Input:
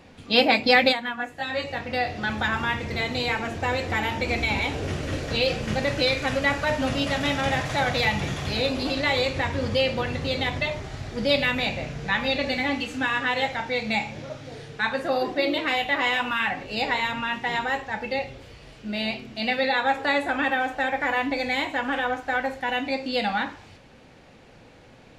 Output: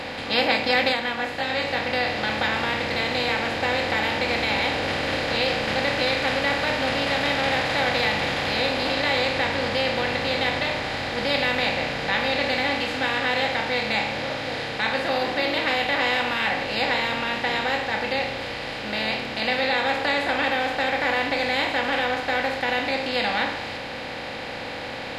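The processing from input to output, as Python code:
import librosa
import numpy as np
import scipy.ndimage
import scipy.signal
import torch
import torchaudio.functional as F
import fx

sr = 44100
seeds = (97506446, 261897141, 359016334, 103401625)

y = fx.bin_compress(x, sr, power=0.4)
y = fx.low_shelf(y, sr, hz=150.0, db=-4.5)
y = F.gain(torch.from_numpy(y), -6.5).numpy()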